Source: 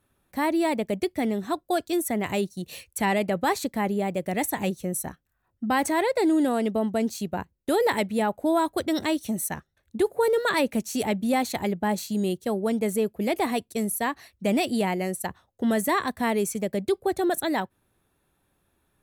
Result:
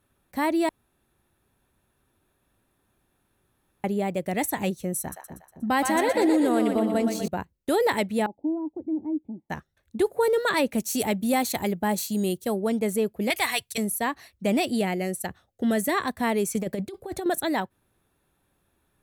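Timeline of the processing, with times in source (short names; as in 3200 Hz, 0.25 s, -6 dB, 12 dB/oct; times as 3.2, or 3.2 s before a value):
0.69–3.84 room tone
5–7.28 split-band echo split 560 Hz, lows 0.259 s, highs 0.12 s, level -5.5 dB
8.26–9.5 vocal tract filter u
10.78–12.56 high shelf 8100 Hz +10 dB
13.3–13.78 EQ curve 140 Hz 0 dB, 200 Hz -19 dB, 2000 Hz +9 dB
14.79–15.97 bell 1000 Hz -11.5 dB 0.28 oct
16.54–17.26 negative-ratio compressor -28 dBFS, ratio -0.5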